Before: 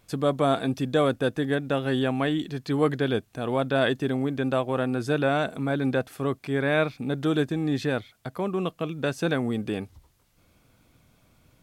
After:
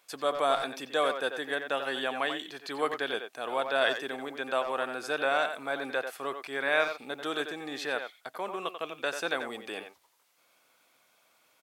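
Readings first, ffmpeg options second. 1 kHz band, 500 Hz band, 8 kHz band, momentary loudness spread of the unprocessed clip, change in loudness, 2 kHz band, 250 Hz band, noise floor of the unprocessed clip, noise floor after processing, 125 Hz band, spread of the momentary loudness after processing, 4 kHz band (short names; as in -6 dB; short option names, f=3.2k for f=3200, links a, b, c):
-0.5 dB, -5.5 dB, 0.0 dB, 6 LU, -5.0 dB, +0.5 dB, -15.5 dB, -64 dBFS, -68 dBFS, -27.0 dB, 10 LU, +0.5 dB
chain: -filter_complex "[0:a]highpass=690,asplit=2[a][b];[b]adelay=90,highpass=300,lowpass=3.4k,asoftclip=type=hard:threshold=-20.5dB,volume=-7dB[c];[a][c]amix=inputs=2:normalize=0"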